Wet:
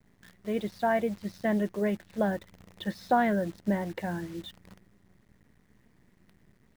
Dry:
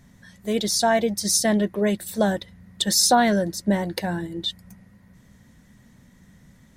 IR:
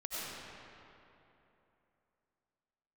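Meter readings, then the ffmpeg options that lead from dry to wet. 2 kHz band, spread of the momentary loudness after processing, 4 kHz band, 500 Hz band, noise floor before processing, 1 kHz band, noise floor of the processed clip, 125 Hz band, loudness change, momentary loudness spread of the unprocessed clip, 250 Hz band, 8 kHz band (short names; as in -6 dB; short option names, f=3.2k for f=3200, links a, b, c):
-6.5 dB, 12 LU, -21.5 dB, -6.5 dB, -54 dBFS, -6.5 dB, -66 dBFS, -6.5 dB, -8.5 dB, 12 LU, -6.5 dB, -31.0 dB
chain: -af "lowpass=f=2.6k:w=0.5412,lowpass=f=2.6k:w=1.3066,acrusher=bits=8:dc=4:mix=0:aa=0.000001,volume=-6.5dB"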